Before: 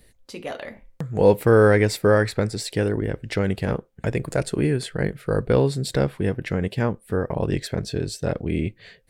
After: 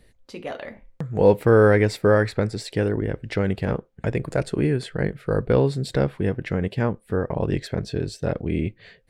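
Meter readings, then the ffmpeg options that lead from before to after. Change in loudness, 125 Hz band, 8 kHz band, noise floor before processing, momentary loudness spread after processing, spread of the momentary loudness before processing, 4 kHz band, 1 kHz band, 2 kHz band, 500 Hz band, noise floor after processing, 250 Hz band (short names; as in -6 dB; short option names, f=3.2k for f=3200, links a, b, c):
0.0 dB, 0.0 dB, -7.0 dB, -58 dBFS, 13 LU, 13 LU, -3.5 dB, -0.5 dB, -1.0 dB, 0.0 dB, -59 dBFS, 0.0 dB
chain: -af "lowpass=f=3.6k:p=1"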